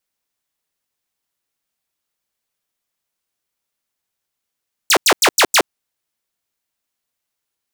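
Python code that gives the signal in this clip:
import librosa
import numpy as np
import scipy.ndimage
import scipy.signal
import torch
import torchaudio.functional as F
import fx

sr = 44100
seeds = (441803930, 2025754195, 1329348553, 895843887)

y = fx.laser_zaps(sr, level_db=-6.0, start_hz=8700.0, end_hz=270.0, length_s=0.07, wave='saw', shots=5, gap_s=0.09)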